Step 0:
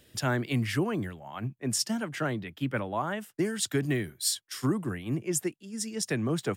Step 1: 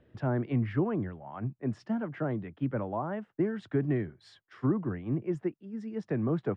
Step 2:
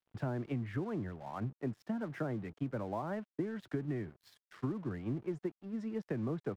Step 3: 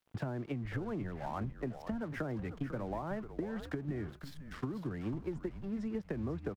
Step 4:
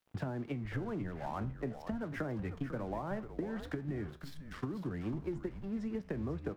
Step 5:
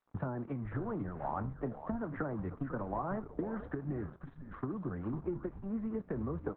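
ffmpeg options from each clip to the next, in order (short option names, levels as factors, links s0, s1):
-filter_complex "[0:a]lowpass=1400,aemphasis=mode=reproduction:type=50kf,acrossover=split=940[s0][s1];[s1]alimiter=level_in=4.73:limit=0.0631:level=0:latency=1:release=17,volume=0.211[s2];[s0][s2]amix=inputs=2:normalize=0"
-af "acompressor=threshold=0.02:ratio=6,aeval=exprs='sgn(val(0))*max(abs(val(0))-0.00133,0)':c=same,volume=1.12"
-filter_complex "[0:a]acompressor=threshold=0.00794:ratio=6,asplit=4[s0][s1][s2][s3];[s1]adelay=497,afreqshift=-140,volume=0.335[s4];[s2]adelay=994,afreqshift=-280,volume=0.104[s5];[s3]adelay=1491,afreqshift=-420,volume=0.0324[s6];[s0][s4][s5][s6]amix=inputs=4:normalize=0,volume=2.24"
-af "flanger=delay=9.4:depth=8.3:regen=80:speed=0.43:shape=triangular,volume=1.68"
-af "lowpass=f=1200:t=q:w=1.8,volume=1.12" -ar 48000 -c:a libopus -b:a 8k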